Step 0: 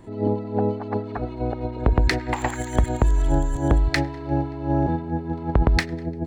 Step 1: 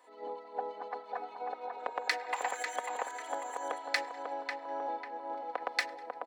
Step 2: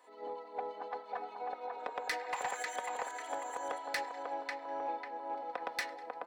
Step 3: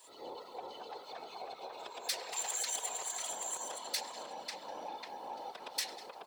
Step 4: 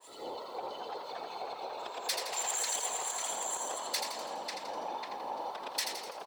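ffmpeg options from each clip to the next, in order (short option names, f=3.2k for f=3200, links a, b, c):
-filter_complex "[0:a]highpass=f=570:w=0.5412,highpass=f=570:w=1.3066,aecho=1:1:4:0.66,asplit=2[a][b];[b]adelay=545,lowpass=f=1.8k:p=1,volume=-3.5dB,asplit=2[c][d];[d]adelay=545,lowpass=f=1.8k:p=1,volume=0.51,asplit=2[e][f];[f]adelay=545,lowpass=f=1.8k:p=1,volume=0.51,asplit=2[g][h];[h]adelay=545,lowpass=f=1.8k:p=1,volume=0.51,asplit=2[i][j];[j]adelay=545,lowpass=f=1.8k:p=1,volume=0.51,asplit=2[k][l];[l]adelay=545,lowpass=f=1.8k:p=1,volume=0.51,asplit=2[m][n];[n]adelay=545,lowpass=f=1.8k:p=1,volume=0.51[o];[a][c][e][g][i][k][m][o]amix=inputs=8:normalize=0,volume=-8.5dB"
-af "flanger=delay=4.6:depth=2.4:regen=85:speed=0.76:shape=triangular,asoftclip=type=tanh:threshold=-31.5dB,volume=4dB"
-af "alimiter=level_in=11.5dB:limit=-24dB:level=0:latency=1:release=98,volume=-11.5dB,aexciter=amount=5.2:drive=7.3:freq=2.8k,afftfilt=real='hypot(re,im)*cos(2*PI*random(0))':imag='hypot(re,im)*sin(2*PI*random(1))':win_size=512:overlap=0.75,volume=4dB"
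-filter_complex "[0:a]asplit=8[a][b][c][d][e][f][g][h];[b]adelay=83,afreqshift=71,volume=-6dB[i];[c]adelay=166,afreqshift=142,volume=-11.5dB[j];[d]adelay=249,afreqshift=213,volume=-17dB[k];[e]adelay=332,afreqshift=284,volume=-22.5dB[l];[f]adelay=415,afreqshift=355,volume=-28.1dB[m];[g]adelay=498,afreqshift=426,volume=-33.6dB[n];[h]adelay=581,afreqshift=497,volume=-39.1dB[o];[a][i][j][k][l][m][n][o]amix=inputs=8:normalize=0,adynamicequalizer=threshold=0.00178:dfrequency=2000:dqfactor=0.7:tfrequency=2000:tqfactor=0.7:attack=5:release=100:ratio=0.375:range=1.5:mode=cutabove:tftype=highshelf,volume=4.5dB"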